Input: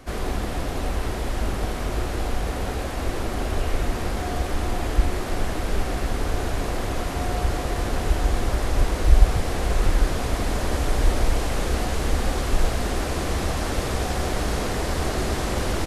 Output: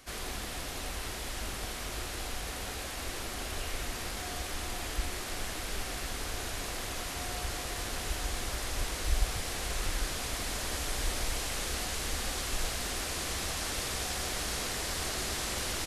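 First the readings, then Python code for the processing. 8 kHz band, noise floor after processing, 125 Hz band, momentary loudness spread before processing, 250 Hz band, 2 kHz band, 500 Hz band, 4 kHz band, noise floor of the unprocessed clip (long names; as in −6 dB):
+0.5 dB, −39 dBFS, −15.0 dB, 4 LU, −14.5 dB, −5.5 dB, −13.0 dB, −1.5 dB, −28 dBFS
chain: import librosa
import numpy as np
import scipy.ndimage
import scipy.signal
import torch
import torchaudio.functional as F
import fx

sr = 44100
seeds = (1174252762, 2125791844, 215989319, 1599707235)

y = fx.tilt_shelf(x, sr, db=-8.0, hz=1500.0)
y = y * 10.0 ** (-7.0 / 20.0)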